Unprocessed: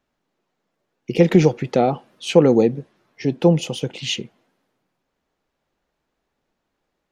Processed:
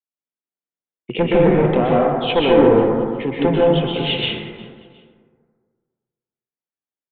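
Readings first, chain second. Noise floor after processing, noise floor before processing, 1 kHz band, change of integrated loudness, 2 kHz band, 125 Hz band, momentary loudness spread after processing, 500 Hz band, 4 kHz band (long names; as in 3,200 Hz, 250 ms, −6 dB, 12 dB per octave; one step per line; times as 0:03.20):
below −85 dBFS, −77 dBFS, +6.0 dB, +2.5 dB, +5.5 dB, −0.5 dB, 10 LU, +3.5 dB, +5.0 dB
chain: high-pass filter 130 Hz 6 dB per octave
downward expander −47 dBFS
treble cut that deepens with the level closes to 1,400 Hz, closed at −15.5 dBFS
high-shelf EQ 2,200 Hz +9 dB
asymmetric clip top −16 dBFS
on a send: repeating echo 359 ms, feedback 35%, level −22.5 dB
on the sum: dense smooth reverb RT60 1.8 s, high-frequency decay 0.3×, pre-delay 110 ms, DRR −4.5 dB
downsampling to 8,000 Hz
level −1.5 dB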